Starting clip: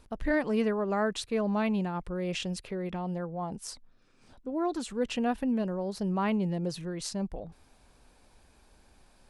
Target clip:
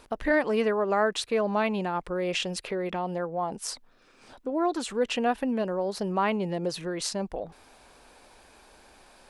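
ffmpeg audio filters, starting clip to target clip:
ffmpeg -i in.wav -filter_complex "[0:a]bass=frequency=250:gain=-13,treble=frequency=4000:gain=-3,asplit=2[link_01][link_02];[link_02]acompressor=threshold=-42dB:ratio=6,volume=1dB[link_03];[link_01][link_03]amix=inputs=2:normalize=0,volume=4dB" out.wav

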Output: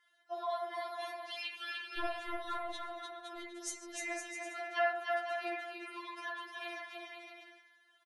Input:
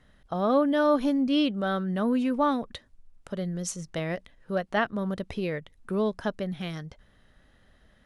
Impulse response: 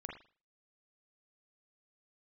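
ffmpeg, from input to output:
-filter_complex "[0:a]asetnsamples=nb_out_samples=441:pad=0,asendcmd='1.99 highpass f 96;3.38 highpass f 830',highpass=810,aecho=1:1:300|510|657|759.9|831.9:0.631|0.398|0.251|0.158|0.1[link_01];[1:a]atrim=start_sample=2205,asetrate=35280,aresample=44100[link_02];[link_01][link_02]afir=irnorm=-1:irlink=0,afftfilt=real='re*4*eq(mod(b,16),0)':imag='im*4*eq(mod(b,16),0)':win_size=2048:overlap=0.75,volume=1dB"

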